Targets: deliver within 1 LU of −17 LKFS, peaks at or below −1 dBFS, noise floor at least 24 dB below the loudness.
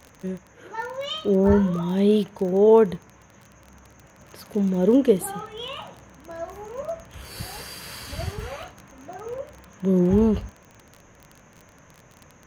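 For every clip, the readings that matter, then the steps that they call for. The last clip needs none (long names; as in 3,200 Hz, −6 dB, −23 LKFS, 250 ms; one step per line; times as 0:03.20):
crackle rate 26 per second; integrated loudness −22.5 LKFS; sample peak −5.0 dBFS; target loudness −17.0 LKFS
→ click removal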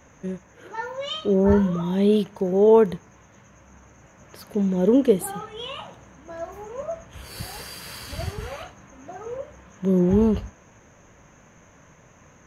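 crackle rate 0 per second; integrated loudness −22.5 LKFS; sample peak −5.0 dBFS; target loudness −17.0 LKFS
→ level +5.5 dB
brickwall limiter −1 dBFS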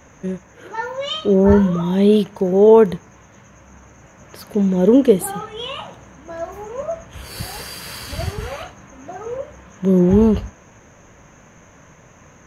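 integrated loudness −17.0 LKFS; sample peak −1.0 dBFS; background noise floor −48 dBFS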